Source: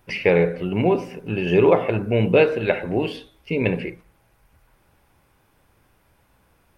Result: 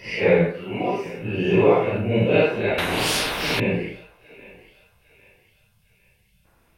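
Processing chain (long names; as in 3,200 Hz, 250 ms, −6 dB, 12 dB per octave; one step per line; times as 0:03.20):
random phases in long frames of 200 ms
0:00.52–0:01.06: low-shelf EQ 280 Hz −11 dB
0:04.17–0:06.45: time-frequency box erased 230–2,800 Hz
on a send: feedback echo with a high-pass in the loop 803 ms, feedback 44%, high-pass 720 Hz, level −17 dB
0:02.78–0:03.60: on the sum: every bin compressed towards the loudest bin 4 to 1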